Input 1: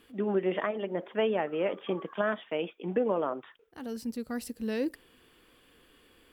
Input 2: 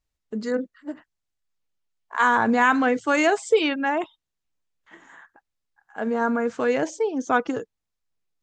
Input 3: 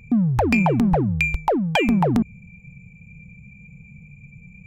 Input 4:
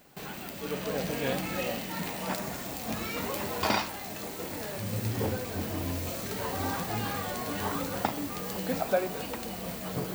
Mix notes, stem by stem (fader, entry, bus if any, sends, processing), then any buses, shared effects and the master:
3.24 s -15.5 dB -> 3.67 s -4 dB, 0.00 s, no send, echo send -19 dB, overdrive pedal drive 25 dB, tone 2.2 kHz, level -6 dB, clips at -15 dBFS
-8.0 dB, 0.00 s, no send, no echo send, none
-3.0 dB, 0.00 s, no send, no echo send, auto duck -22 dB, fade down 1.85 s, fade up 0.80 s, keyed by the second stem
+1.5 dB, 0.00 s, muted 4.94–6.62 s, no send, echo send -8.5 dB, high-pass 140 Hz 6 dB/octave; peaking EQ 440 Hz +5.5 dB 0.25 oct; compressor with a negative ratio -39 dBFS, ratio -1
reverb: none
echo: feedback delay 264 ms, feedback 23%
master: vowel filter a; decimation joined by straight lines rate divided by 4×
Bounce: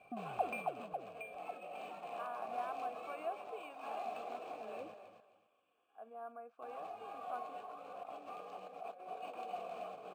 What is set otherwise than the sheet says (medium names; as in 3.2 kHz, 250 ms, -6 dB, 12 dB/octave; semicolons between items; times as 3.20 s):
stem 1: missing overdrive pedal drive 25 dB, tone 2.2 kHz, level -6 dB, clips at -15 dBFS; stem 2 -8.0 dB -> -15.0 dB